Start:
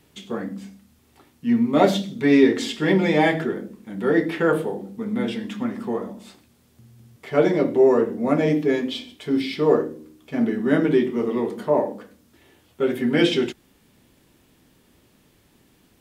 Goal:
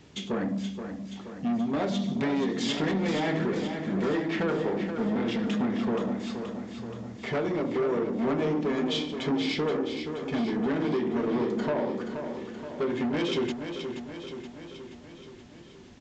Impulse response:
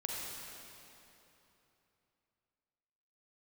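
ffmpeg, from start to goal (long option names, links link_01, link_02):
-af "acompressor=threshold=-25dB:ratio=12,lowshelf=frequency=190:gain=9,aresample=16000,asoftclip=type=tanh:threshold=-27dB,aresample=44100,lowshelf=frequency=95:gain=-11,aecho=1:1:476|952|1428|1904|2380|2856|3332|3808:0.398|0.239|0.143|0.086|0.0516|0.031|0.0186|0.0111,volume=4dB"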